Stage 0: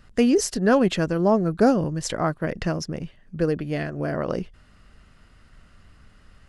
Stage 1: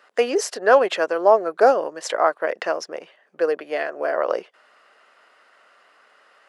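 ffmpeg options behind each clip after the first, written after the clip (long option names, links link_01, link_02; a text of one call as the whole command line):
ffmpeg -i in.wav -af "highpass=frequency=500:width=0.5412,highpass=frequency=500:width=1.3066,highshelf=frequency=3100:gain=-12,volume=8.5dB" out.wav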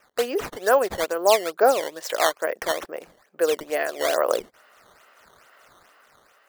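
ffmpeg -i in.wav -af "dynaudnorm=framelen=280:gausssize=7:maxgain=7dB,acrusher=samples=10:mix=1:aa=0.000001:lfo=1:lforange=16:lforate=2.3,volume=-4.5dB" out.wav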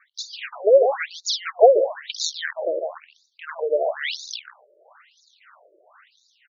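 ffmpeg -i in.wav -af "aecho=1:1:144:0.398,afftfilt=real='re*between(b*sr/1024,440*pow(5100/440,0.5+0.5*sin(2*PI*1*pts/sr))/1.41,440*pow(5100/440,0.5+0.5*sin(2*PI*1*pts/sr))*1.41)':imag='im*between(b*sr/1024,440*pow(5100/440,0.5+0.5*sin(2*PI*1*pts/sr))/1.41,440*pow(5100/440,0.5+0.5*sin(2*PI*1*pts/sr))*1.41)':win_size=1024:overlap=0.75,volume=6dB" out.wav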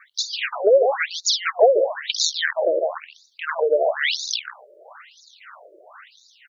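ffmpeg -i in.wav -af "acompressor=threshold=-28dB:ratio=2,volume=8.5dB" out.wav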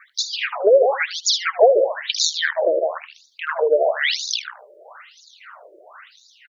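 ffmpeg -i in.wav -af "aecho=1:1:77:0.133,volume=1.5dB" out.wav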